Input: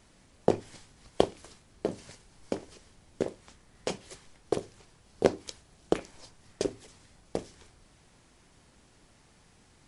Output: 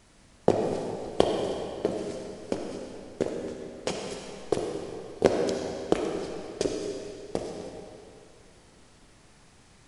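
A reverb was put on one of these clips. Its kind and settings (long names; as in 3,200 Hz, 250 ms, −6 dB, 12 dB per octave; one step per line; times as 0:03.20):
comb and all-pass reverb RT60 2.6 s, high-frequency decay 0.9×, pre-delay 20 ms, DRR 1 dB
level +2 dB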